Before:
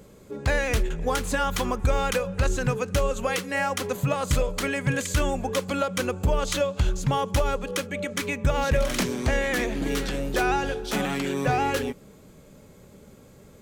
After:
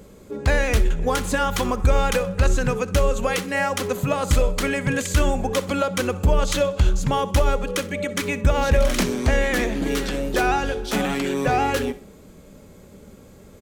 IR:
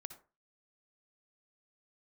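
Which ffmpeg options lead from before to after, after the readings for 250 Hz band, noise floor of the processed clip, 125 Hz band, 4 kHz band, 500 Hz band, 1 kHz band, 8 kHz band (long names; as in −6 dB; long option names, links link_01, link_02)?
+4.0 dB, −47 dBFS, +4.0 dB, +3.0 dB, +4.0 dB, +3.5 dB, +3.0 dB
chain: -filter_complex "[0:a]equalizer=frequency=130:width_type=o:width=0.4:gain=-8,aecho=1:1:63|126|189:0.119|0.0475|0.019,asplit=2[link_01][link_02];[1:a]atrim=start_sample=2205,lowshelf=frequency=430:gain=9[link_03];[link_02][link_03]afir=irnorm=-1:irlink=0,volume=-3.5dB[link_04];[link_01][link_04]amix=inputs=2:normalize=0"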